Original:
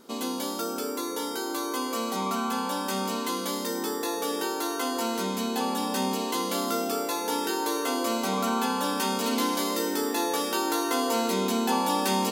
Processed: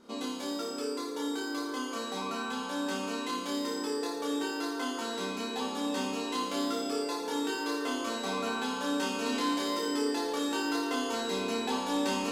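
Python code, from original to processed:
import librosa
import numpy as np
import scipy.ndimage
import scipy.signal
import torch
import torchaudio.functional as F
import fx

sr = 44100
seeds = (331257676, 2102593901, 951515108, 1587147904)

y = 10.0 ** (-15.0 / 20.0) * np.tanh(x / 10.0 ** (-15.0 / 20.0))
y = fx.air_absorb(y, sr, metres=61.0)
y = fx.room_flutter(y, sr, wall_m=4.8, rt60_s=0.72)
y = y * librosa.db_to_amplitude(-5.0)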